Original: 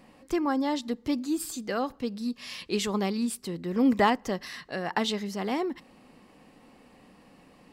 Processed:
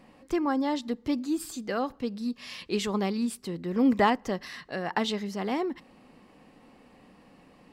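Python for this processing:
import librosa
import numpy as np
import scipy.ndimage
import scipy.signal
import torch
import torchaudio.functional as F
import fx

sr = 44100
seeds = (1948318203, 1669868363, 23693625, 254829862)

y = fx.high_shelf(x, sr, hz=5300.0, db=-5.5)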